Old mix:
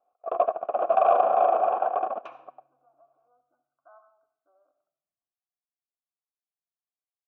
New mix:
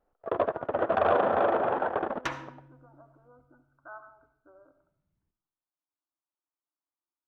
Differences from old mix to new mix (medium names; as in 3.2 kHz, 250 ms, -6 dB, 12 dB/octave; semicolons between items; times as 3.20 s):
first sound -10.0 dB; master: remove vowel filter a